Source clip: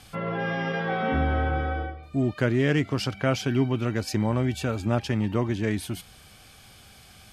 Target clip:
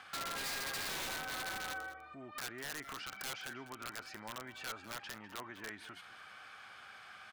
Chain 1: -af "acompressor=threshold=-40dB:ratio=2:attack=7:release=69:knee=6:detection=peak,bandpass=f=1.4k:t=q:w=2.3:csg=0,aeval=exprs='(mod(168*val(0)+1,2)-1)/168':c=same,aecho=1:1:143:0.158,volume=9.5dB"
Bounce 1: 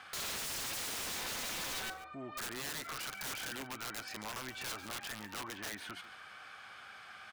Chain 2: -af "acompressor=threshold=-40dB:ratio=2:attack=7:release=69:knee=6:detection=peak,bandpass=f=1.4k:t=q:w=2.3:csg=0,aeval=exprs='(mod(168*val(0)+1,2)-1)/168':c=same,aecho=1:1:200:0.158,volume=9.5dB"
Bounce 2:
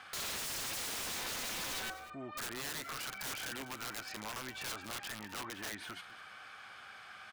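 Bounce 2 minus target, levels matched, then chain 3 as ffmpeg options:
compressor: peak gain reduction -5 dB
-af "acompressor=threshold=-50.5dB:ratio=2:attack=7:release=69:knee=6:detection=peak,bandpass=f=1.4k:t=q:w=2.3:csg=0,aeval=exprs='(mod(168*val(0)+1,2)-1)/168':c=same,aecho=1:1:200:0.158,volume=9.5dB"

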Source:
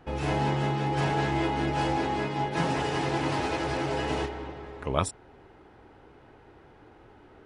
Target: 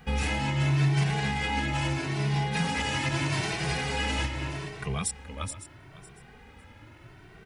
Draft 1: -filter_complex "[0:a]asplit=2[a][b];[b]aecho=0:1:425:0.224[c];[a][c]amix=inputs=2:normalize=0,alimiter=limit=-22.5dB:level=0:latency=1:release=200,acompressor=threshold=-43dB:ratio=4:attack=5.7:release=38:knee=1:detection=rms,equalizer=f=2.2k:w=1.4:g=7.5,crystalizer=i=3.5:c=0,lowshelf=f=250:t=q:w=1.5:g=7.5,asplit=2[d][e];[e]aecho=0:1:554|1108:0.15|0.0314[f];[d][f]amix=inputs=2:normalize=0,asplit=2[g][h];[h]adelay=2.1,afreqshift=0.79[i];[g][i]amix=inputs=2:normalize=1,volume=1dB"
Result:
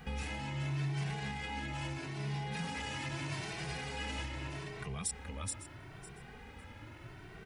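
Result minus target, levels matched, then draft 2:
compressor: peak gain reduction +13 dB
-filter_complex "[0:a]asplit=2[a][b];[b]aecho=0:1:425:0.224[c];[a][c]amix=inputs=2:normalize=0,alimiter=limit=-22.5dB:level=0:latency=1:release=200,equalizer=f=2.2k:w=1.4:g=7.5,crystalizer=i=3.5:c=0,lowshelf=f=250:t=q:w=1.5:g=7.5,asplit=2[d][e];[e]aecho=0:1:554|1108:0.15|0.0314[f];[d][f]amix=inputs=2:normalize=0,asplit=2[g][h];[h]adelay=2.1,afreqshift=0.79[i];[g][i]amix=inputs=2:normalize=1,volume=1dB"

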